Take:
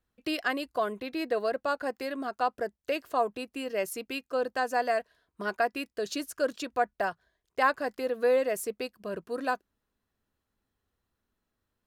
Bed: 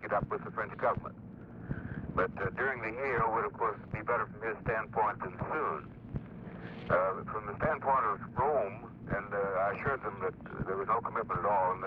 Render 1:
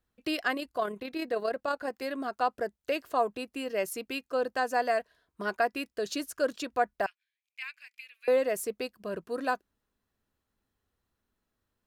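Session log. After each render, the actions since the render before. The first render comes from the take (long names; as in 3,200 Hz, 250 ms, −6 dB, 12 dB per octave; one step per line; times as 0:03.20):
0:00.54–0:02.02: amplitude modulation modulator 35 Hz, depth 25%
0:07.06–0:08.28: four-pole ladder high-pass 2,300 Hz, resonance 85%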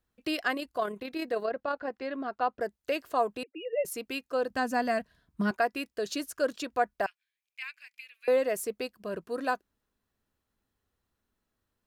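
0:01.45–0:02.61: high-frequency loss of the air 190 metres
0:03.43–0:03.85: three sine waves on the formant tracks
0:04.50–0:05.51: low shelf with overshoot 290 Hz +11.5 dB, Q 1.5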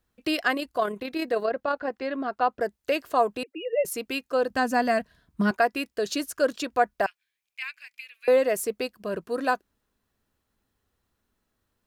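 level +5 dB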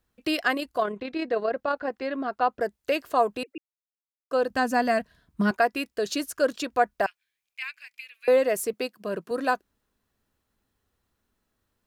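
0:00.82–0:01.49: high-frequency loss of the air 110 metres
0:03.58–0:04.31: silence
0:08.73–0:09.31: high-pass filter 130 Hz 24 dB per octave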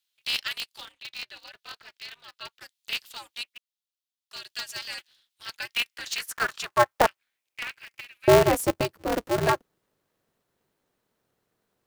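high-pass filter sweep 3,400 Hz → 310 Hz, 0:05.57–0:07.83
ring modulator with a square carrier 120 Hz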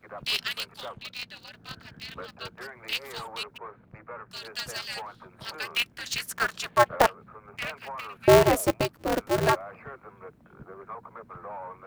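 mix in bed −10 dB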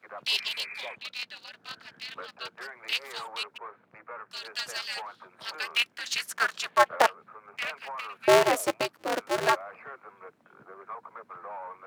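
0:00.31–0:00.92: healed spectral selection 1,100–2,600 Hz before
meter weighting curve A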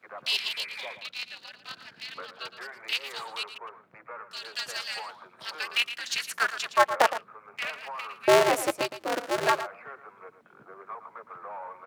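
single-tap delay 114 ms −12 dB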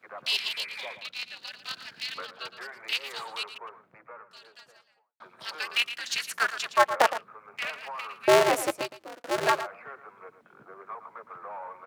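0:01.44–0:02.27: high-shelf EQ 2,200 Hz +7.5 dB
0:03.50–0:05.20: fade out and dull
0:08.62–0:09.24: fade out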